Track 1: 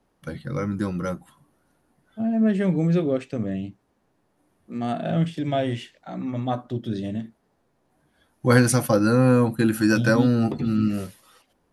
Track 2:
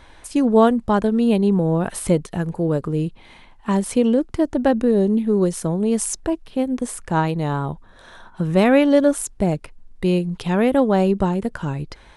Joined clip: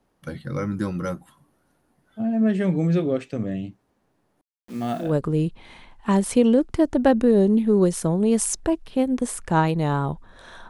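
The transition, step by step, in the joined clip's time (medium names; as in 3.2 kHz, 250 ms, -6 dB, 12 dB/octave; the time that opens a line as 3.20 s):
track 1
4.41–5.15 s: word length cut 8-bit, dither none
5.06 s: go over to track 2 from 2.66 s, crossfade 0.18 s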